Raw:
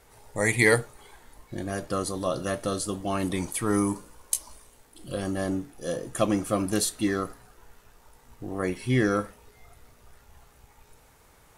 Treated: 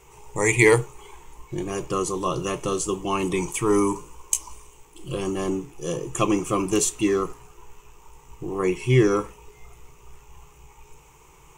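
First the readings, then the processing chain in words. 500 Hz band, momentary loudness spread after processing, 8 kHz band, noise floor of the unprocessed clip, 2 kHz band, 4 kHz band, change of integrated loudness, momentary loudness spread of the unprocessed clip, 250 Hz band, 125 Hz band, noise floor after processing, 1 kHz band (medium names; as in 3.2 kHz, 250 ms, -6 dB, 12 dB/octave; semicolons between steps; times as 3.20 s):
+5.5 dB, 14 LU, +4.5 dB, -58 dBFS, +1.5 dB, +1.5 dB, +4.0 dB, 14 LU, +3.0 dB, +4.5 dB, -52 dBFS, +5.0 dB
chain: rippled EQ curve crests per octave 0.72, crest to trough 14 dB; trim +2.5 dB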